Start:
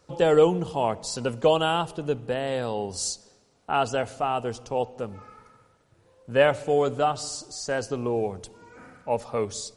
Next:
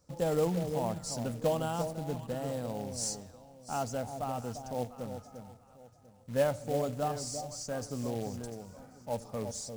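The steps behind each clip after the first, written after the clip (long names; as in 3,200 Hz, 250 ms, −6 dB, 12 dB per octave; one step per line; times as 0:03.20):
drawn EQ curve 260 Hz 0 dB, 390 Hz −12 dB, 560 Hz −4 dB, 3,000 Hz −16 dB, 5,600 Hz −1 dB
delay that swaps between a low-pass and a high-pass 347 ms, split 820 Hz, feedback 51%, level −7 dB
floating-point word with a short mantissa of 2 bits
level −4 dB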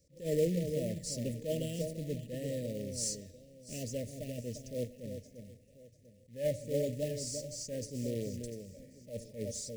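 Chebyshev band-stop filter 610–1,800 Hz, order 5
level that may rise only so fast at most 180 dB per second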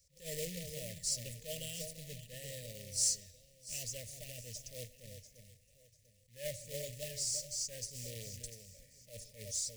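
guitar amp tone stack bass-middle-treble 10-0-10
level +5.5 dB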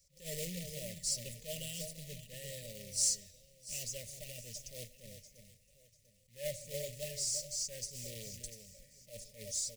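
notch filter 1,700 Hz, Q 15
comb filter 5.2 ms, depth 39%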